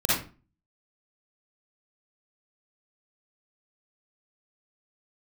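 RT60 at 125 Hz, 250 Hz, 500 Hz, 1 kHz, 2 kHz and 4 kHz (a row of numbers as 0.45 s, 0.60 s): 0.50 s, 0.45 s, 0.35 s, 0.35 s, 0.30 s, 0.25 s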